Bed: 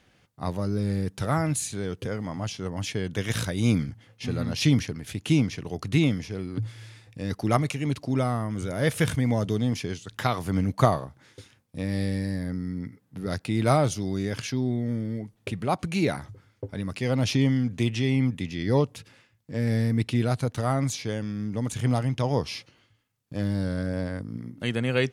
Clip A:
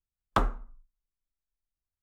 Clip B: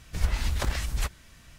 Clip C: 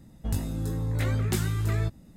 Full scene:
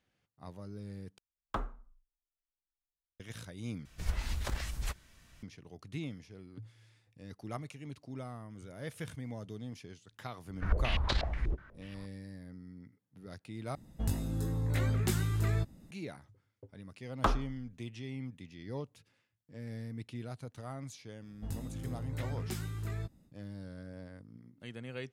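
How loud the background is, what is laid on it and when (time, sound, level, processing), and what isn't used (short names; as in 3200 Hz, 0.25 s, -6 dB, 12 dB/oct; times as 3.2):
bed -18 dB
1.18 replace with A -10.5 dB + high shelf 3900 Hz -4 dB
3.85 replace with B -8 dB
10.48 add B -4 dB + stepped low-pass 8.2 Hz 350–4100 Hz
13.75 replace with C -4 dB
16.88 add A -3 dB
21.18 add C -11.5 dB, fades 0.10 s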